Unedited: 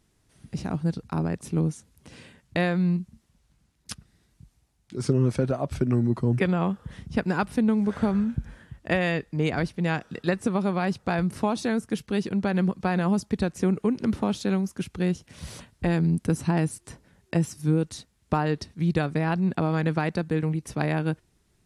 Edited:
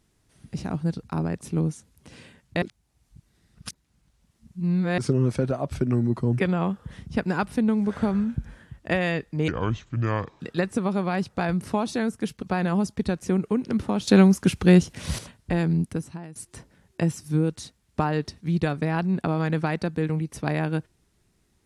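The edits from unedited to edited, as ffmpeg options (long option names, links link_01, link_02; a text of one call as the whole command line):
ffmpeg -i in.wav -filter_complex "[0:a]asplit=9[link_01][link_02][link_03][link_04][link_05][link_06][link_07][link_08][link_09];[link_01]atrim=end=2.622[link_10];[link_02]atrim=start=2.618:end=4.982,asetpts=PTS-STARTPTS,areverse[link_11];[link_03]atrim=start=4.978:end=9.484[link_12];[link_04]atrim=start=9.48:end=10.1,asetpts=PTS-STARTPTS,asetrate=29547,aresample=44100[link_13];[link_05]atrim=start=10.096:end=12.122[link_14];[link_06]atrim=start=12.758:end=14.412[link_15];[link_07]atrim=start=14.408:end=15.522,asetpts=PTS-STARTPTS,volume=10dB[link_16];[link_08]atrim=start=15.518:end=16.69,asetpts=PTS-STARTPTS,afade=type=out:start_time=0.632:duration=0.54:curve=qua:silence=0.112202[link_17];[link_09]atrim=start=16.69,asetpts=PTS-STARTPTS,afade=type=in:duration=0.004:curve=hsin:silence=0.112202[link_18];[link_10][link_11]acrossfade=duration=0.004:curve1=hsin:curve2=hsin[link_19];[link_19][link_12]acrossfade=duration=0.004:curve1=hsin:curve2=hsin[link_20];[link_20][link_13]acrossfade=duration=0.004:curve1=hsin:curve2=hsin[link_21];[link_21][link_14]acrossfade=duration=0.004:curve1=hsin:curve2=hsin[link_22];[link_22][link_15]acrossfade=duration=0.004:curve1=hsin:curve2=hsin[link_23];[link_23][link_16]acrossfade=duration=0.004:curve1=hsin:curve2=hsin[link_24];[link_17][link_18]concat=n=2:v=0:a=1[link_25];[link_24][link_25]acrossfade=duration=0.004:curve1=hsin:curve2=hsin" out.wav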